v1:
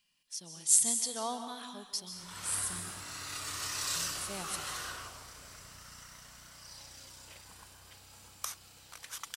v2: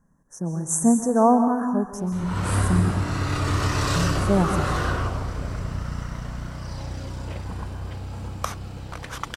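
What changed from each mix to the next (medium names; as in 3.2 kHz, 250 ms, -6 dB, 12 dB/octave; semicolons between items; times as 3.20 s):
speech: add Chebyshev band-stop 1.7–6.1 kHz, order 4; master: remove pre-emphasis filter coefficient 0.97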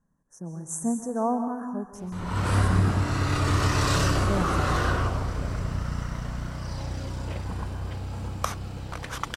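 speech -9.0 dB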